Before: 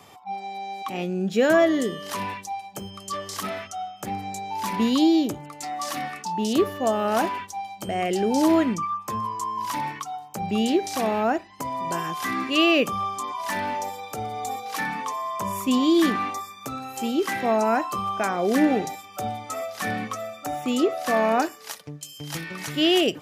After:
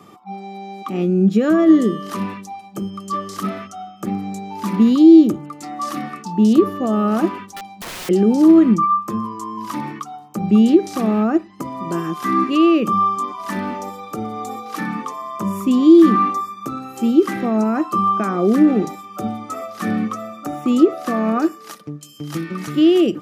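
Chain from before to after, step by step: peak limiter -15 dBFS, peak gain reduction 6.5 dB; small resonant body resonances 210/320/1200 Hz, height 17 dB, ringing for 45 ms; 7.50–8.09 s: integer overflow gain 23.5 dB; trim -3 dB

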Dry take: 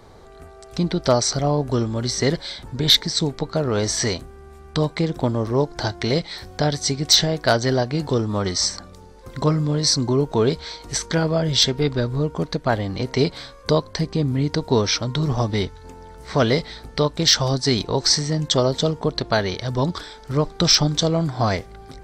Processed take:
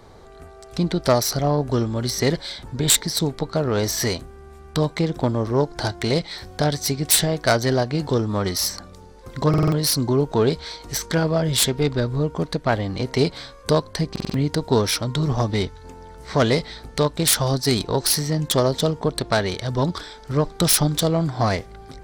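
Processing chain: self-modulated delay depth 0.073 ms; buffer glitch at 9.49/14.11 s, samples 2048, times 4

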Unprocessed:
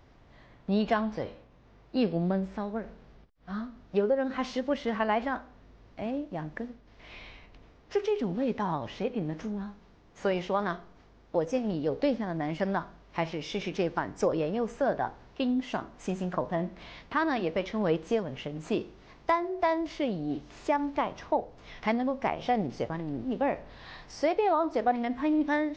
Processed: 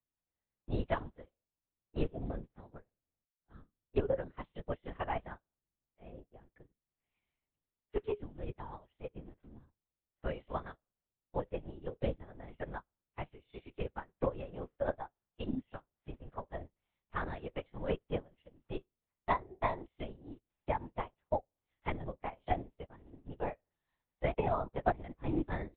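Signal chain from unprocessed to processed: LPC vocoder at 8 kHz whisper; upward expansion 2.5:1, over -47 dBFS; trim -3 dB

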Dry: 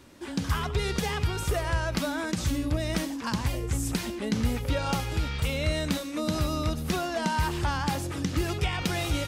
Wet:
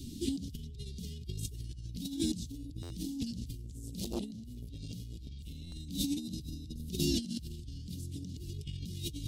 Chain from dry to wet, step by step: Chebyshev band-stop 260–3700 Hz, order 3; bass shelf 340 Hz +6 dB; hum notches 50/100/150/200/250/300 Hz; peak limiter -24.5 dBFS, peak gain reduction 12 dB; compressor with a negative ratio -38 dBFS, ratio -0.5; small resonant body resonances 420/2900 Hz, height 8 dB; buffer glitch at 2.82/5.64 s, samples 512, times 6; 3.64–5.67 s: transformer saturation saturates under 380 Hz; trim +1 dB

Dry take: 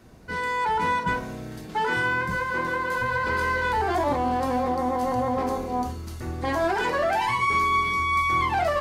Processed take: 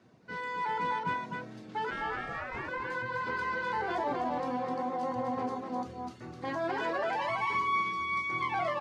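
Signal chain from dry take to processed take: low-pass 5.2 kHz 12 dB/octave; reverb removal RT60 0.52 s; high-pass 110 Hz 24 dB/octave; 1.90–2.67 s: ring modulator 120 Hz -> 760 Hz; delay 255 ms -4 dB; trim -8.5 dB

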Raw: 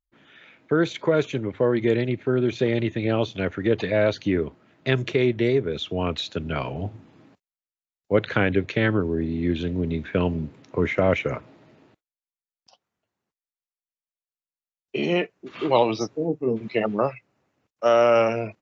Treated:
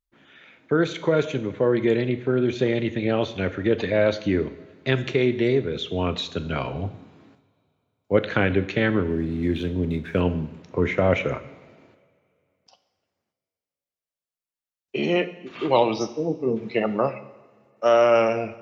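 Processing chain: 9.09–10.21 s: hysteresis with a dead band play -47.5 dBFS; two-slope reverb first 0.89 s, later 2.8 s, from -18 dB, DRR 10.5 dB

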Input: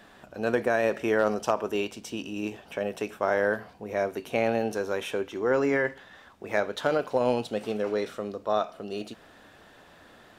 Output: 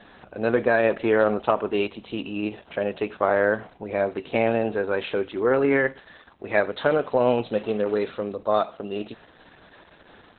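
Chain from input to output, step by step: trim +5 dB; Opus 8 kbps 48 kHz

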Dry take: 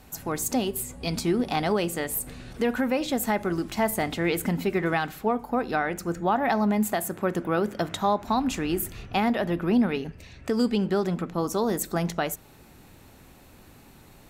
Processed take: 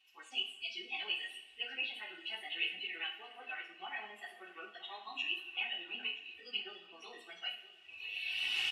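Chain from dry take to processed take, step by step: one-bit delta coder 64 kbps, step -34.5 dBFS; recorder AGC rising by 9.3 dB/s; spectral noise reduction 20 dB; band-pass filter 2.8 kHz, Q 16; comb 2.7 ms, depth 62%; wow and flutter 16 cents; plain phase-vocoder stretch 0.61×; on a send: feedback delay 977 ms, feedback 34%, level -17 dB; on the sum: two-slope reverb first 0.48 s, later 2 s, from -16 dB, DRR 1 dB; trim +10.5 dB

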